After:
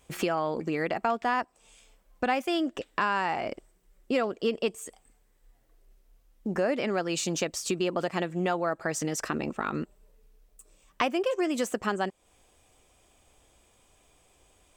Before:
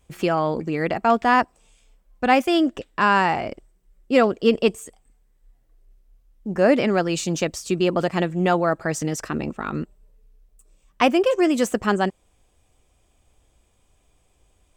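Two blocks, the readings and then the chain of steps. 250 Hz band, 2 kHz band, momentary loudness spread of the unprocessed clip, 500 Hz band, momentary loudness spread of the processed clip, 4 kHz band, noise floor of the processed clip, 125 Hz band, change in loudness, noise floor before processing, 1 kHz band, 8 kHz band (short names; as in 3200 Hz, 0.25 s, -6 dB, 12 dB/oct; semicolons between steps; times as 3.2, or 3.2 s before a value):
-9.0 dB, -7.5 dB, 11 LU, -8.5 dB, 7 LU, -6.0 dB, -66 dBFS, -9.5 dB, -8.5 dB, -64 dBFS, -8.5 dB, -2.5 dB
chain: low shelf 180 Hz -10.5 dB; compressor 3:1, threshold -33 dBFS, peak gain reduction 15 dB; gain +4.5 dB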